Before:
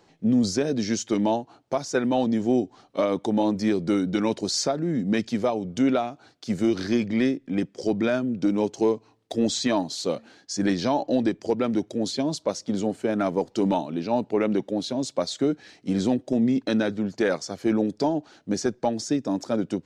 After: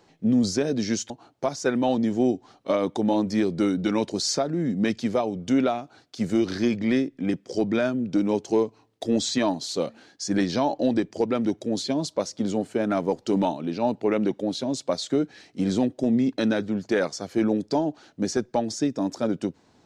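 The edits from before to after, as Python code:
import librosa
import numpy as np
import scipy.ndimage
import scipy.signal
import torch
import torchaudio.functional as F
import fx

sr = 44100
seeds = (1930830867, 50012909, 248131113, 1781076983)

y = fx.edit(x, sr, fx.cut(start_s=1.1, length_s=0.29), tone=tone)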